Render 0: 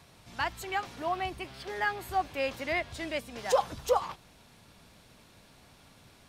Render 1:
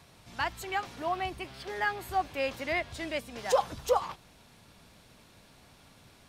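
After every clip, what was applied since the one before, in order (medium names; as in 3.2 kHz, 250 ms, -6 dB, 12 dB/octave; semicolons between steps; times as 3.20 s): no audible change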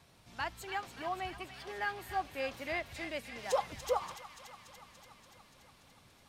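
wow and flutter 26 cents; feedback echo behind a high-pass 288 ms, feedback 71%, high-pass 1.4 kHz, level -8.5 dB; trim -6 dB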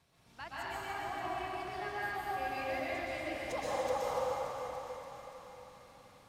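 plate-style reverb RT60 4.1 s, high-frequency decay 0.45×, pre-delay 110 ms, DRR -9 dB; trim -9 dB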